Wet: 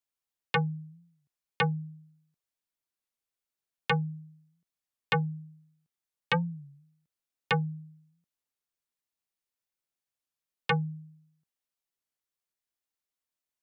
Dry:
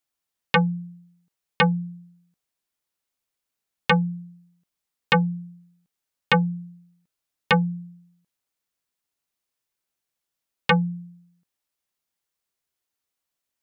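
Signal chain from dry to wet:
frequency shifter −18 Hz
wow of a warped record 33 1/3 rpm, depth 160 cents
level −8 dB

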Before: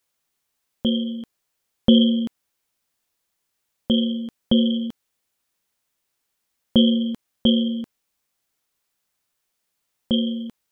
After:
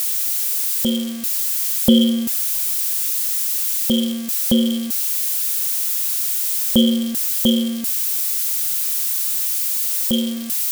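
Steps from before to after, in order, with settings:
spike at every zero crossing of −19 dBFS
level +1.5 dB

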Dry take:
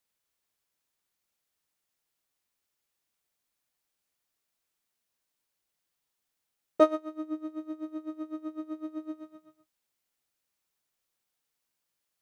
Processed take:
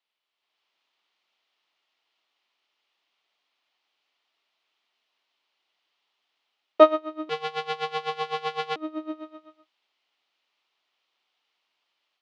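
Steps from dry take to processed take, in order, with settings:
0:07.29–0:08.76: sub-harmonics by changed cycles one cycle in 2, inverted
automatic gain control gain up to 9 dB
loudspeaker in its box 480–4,200 Hz, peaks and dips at 510 Hz −6 dB, 1,600 Hz −6 dB, 3,000 Hz +4 dB
level +3.5 dB

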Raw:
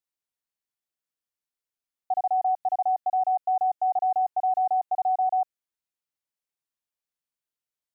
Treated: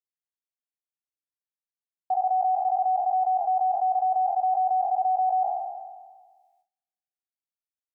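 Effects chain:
peak hold with a decay on every bin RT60 1.55 s
noise gate with hold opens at −59 dBFS

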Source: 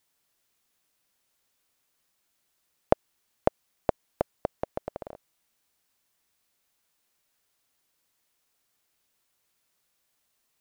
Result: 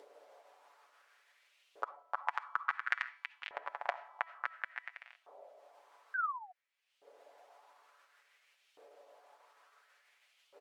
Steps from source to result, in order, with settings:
pitch shifter swept by a sawtooth +4 semitones, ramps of 165 ms
downward compressor 4 to 1, threshold −34 dBFS, peak gain reduction 16.5 dB
convolution reverb RT60 0.80 s, pre-delay 45 ms, DRR 16 dB
delay with pitch and tempo change per echo 96 ms, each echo +5 semitones, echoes 2
envelope filter 480–1,800 Hz, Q 2.2, up, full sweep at −42.5 dBFS
tuned comb filter 330 Hz, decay 0.99 s, mix 50%
sound drawn into the spectrogram fall, 0:06.14–0:06.52, 710–1,600 Hz −55 dBFS
comb filter 7 ms, depth 49%
upward compression, threshold −60 dBFS
auto-filter high-pass saw up 0.57 Hz 440–3,100 Hz
level +13.5 dB

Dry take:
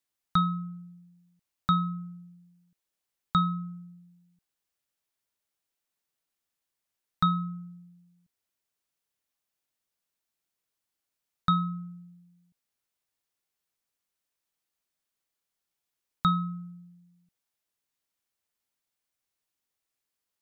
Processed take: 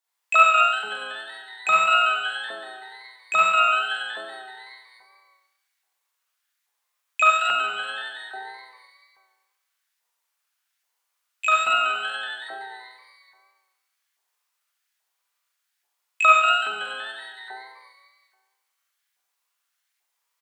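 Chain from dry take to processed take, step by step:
on a send: echo with shifted repeats 188 ms, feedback 62%, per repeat +120 Hz, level −10 dB
on the sum: four-comb reverb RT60 1.3 s, combs from 32 ms, DRR −7 dB
auto-filter high-pass saw up 1.2 Hz 760–1,800 Hz
pitch-shifted copies added −12 semitones −14 dB, +12 semitones −4 dB
tape wow and flutter 25 cents
level −1.5 dB

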